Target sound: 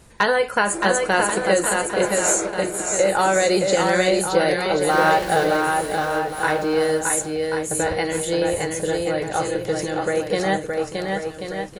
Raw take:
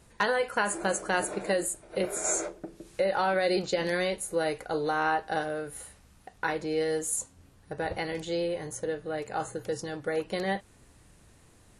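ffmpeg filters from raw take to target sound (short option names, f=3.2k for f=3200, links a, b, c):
-filter_complex "[0:a]asettb=1/sr,asplit=3[a][b][c];[a]atrim=end=4.904[d];[b]atrim=start=4.9:end=5.57,asetpts=PTS-STARTPTS,afade=t=in:d=0.004:c=qsin,afade=t=out:st=0.666:d=0.004:c=qsin,aeval=exprs='val(0)+0.5*0.0178*sgn(val(0))':c=same[e];[c]atrim=start=5.566[f];[d][e]acrossfade=d=0.004:c1=hsin:c2=qsin[g];[g][f]acrossfade=d=0.004:c1=qsin:c2=hsin,aecho=1:1:620|1085|1434|1695|1891:0.631|0.398|0.251|0.158|0.1,volume=8dB"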